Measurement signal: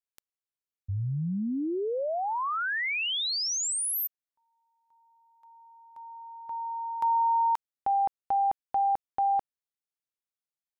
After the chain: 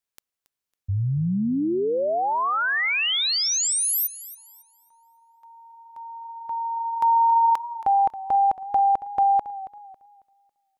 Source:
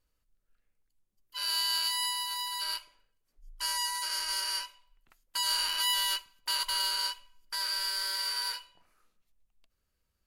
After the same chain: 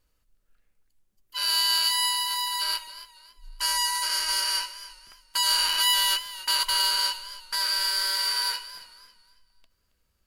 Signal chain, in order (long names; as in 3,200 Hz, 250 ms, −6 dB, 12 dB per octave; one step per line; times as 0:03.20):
feedback echo with a swinging delay time 275 ms, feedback 32%, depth 53 cents, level −15.5 dB
level +6.5 dB